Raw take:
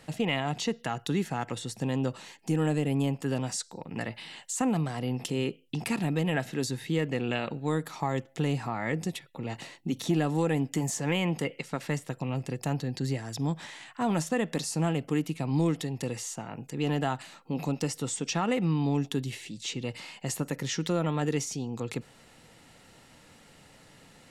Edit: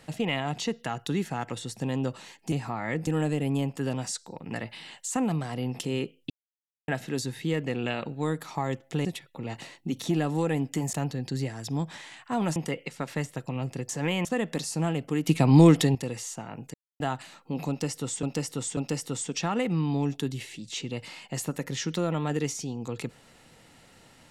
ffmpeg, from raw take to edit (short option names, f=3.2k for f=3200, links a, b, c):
-filter_complex "[0:a]asplit=16[a][b][c][d][e][f][g][h][i][j][k][l][m][n][o][p];[a]atrim=end=2.522[q];[b]atrim=start=8.498:end=9.052[r];[c]atrim=start=2.518:end=5.75,asetpts=PTS-STARTPTS,afade=t=out:st=3.228:d=0.004:c=hsin[s];[d]atrim=start=5.75:end=6.33,asetpts=PTS-STARTPTS,volume=0[t];[e]atrim=start=6.33:end=8.502,asetpts=PTS-STARTPTS,afade=t=in:d=0.004:c=hsin[u];[f]atrim=start=9.048:end=10.932[v];[g]atrim=start=12.618:end=14.252[w];[h]atrim=start=11.288:end=12.622[x];[i]atrim=start=10.928:end=11.292[y];[j]atrim=start=14.248:end=15.272[z];[k]atrim=start=15.268:end=15.952,asetpts=PTS-STARTPTS,volume=10.5dB[aa];[l]atrim=start=15.948:end=16.74,asetpts=PTS-STARTPTS,afade=t=out:st=0.788:d=0.004:c=hsin[ab];[m]atrim=start=16.74:end=17,asetpts=PTS-STARTPTS,volume=0[ac];[n]atrim=start=17:end=18.232,asetpts=PTS-STARTPTS,afade=t=in:d=0.004:c=hsin[ad];[o]atrim=start=17.688:end=18.232[ae];[p]atrim=start=17.688[af];[q][r]acrossfade=d=0.004:c1=hsin:c2=hsin[ag];[s][t][u]concat=n=3:v=0:a=1[ah];[ag][ah]acrossfade=d=0.004:c1=hsin:c2=hsin[ai];[ai][v]acrossfade=d=0.004:c1=hsin:c2=hsin[aj];[aj][w]acrossfade=d=0.004:c1=hsin:c2=hsin[ak];[ak][x]acrossfade=d=0.004:c1=hsin:c2=hsin[al];[al][y]acrossfade=d=0.004:c1=hsin:c2=hsin[am];[am][z]acrossfade=d=0.004:c1=hsin:c2=hsin[an];[an][aa]acrossfade=d=0.004:c1=hsin:c2=hsin[ao];[ab][ac][ad]concat=n=3:v=0:a=1[ap];[ao][ap]acrossfade=d=0.004:c1=hsin:c2=hsin[aq];[aq][ae]acrossfade=d=0.004:c1=hsin:c2=hsin[ar];[ar][af]acrossfade=d=0.004:c1=hsin:c2=hsin"